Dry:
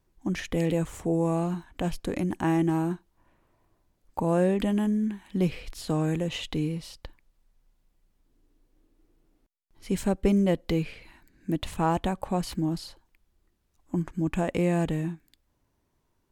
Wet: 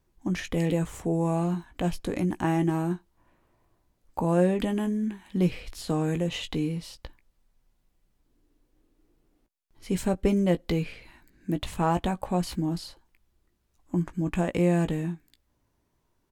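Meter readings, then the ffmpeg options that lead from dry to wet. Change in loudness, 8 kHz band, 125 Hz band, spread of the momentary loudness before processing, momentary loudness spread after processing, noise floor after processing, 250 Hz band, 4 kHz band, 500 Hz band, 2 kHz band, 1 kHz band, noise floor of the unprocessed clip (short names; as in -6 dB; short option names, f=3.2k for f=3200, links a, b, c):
0.0 dB, +0.5 dB, +1.0 dB, 11 LU, 11 LU, -73 dBFS, 0.0 dB, +0.5 dB, 0.0 dB, +0.5 dB, +0.5 dB, -73 dBFS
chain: -filter_complex "[0:a]asplit=2[a][b];[b]adelay=17,volume=-10dB[c];[a][c]amix=inputs=2:normalize=0"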